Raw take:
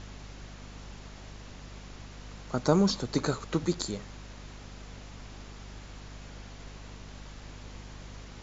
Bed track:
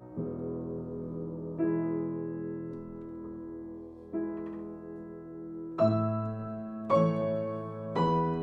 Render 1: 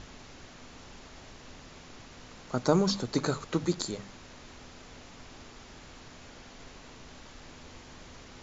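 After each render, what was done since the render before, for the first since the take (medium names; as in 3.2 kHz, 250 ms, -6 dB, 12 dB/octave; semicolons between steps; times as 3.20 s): hum notches 50/100/150/200 Hz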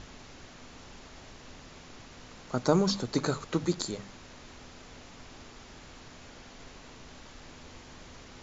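no audible change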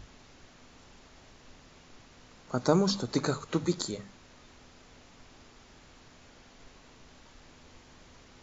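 noise print and reduce 6 dB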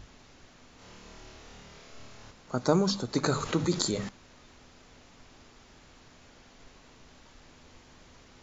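0.76–2.31 s: flutter echo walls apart 4.6 m, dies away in 1.1 s; 3.23–4.09 s: level flattener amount 50%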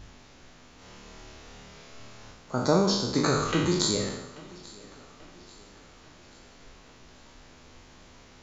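spectral sustain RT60 0.87 s; thinning echo 837 ms, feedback 50%, high-pass 150 Hz, level -21.5 dB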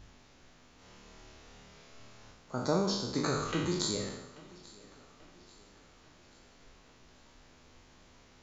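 trim -7 dB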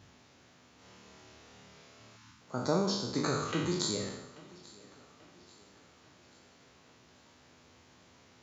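2.16–2.41 s: time-frequency box 340–860 Hz -25 dB; high-pass 79 Hz 24 dB/octave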